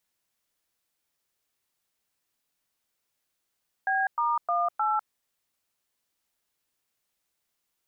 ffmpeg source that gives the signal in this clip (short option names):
-f lavfi -i "aevalsrc='0.0531*clip(min(mod(t,0.308),0.2-mod(t,0.308))/0.002,0,1)*(eq(floor(t/0.308),0)*(sin(2*PI*770*mod(t,0.308))+sin(2*PI*1633*mod(t,0.308)))+eq(floor(t/0.308),1)*(sin(2*PI*941*mod(t,0.308))+sin(2*PI*1209*mod(t,0.308)))+eq(floor(t/0.308),2)*(sin(2*PI*697*mod(t,0.308))+sin(2*PI*1209*mod(t,0.308)))+eq(floor(t/0.308),3)*(sin(2*PI*852*mod(t,0.308))+sin(2*PI*1336*mod(t,0.308))))':d=1.232:s=44100"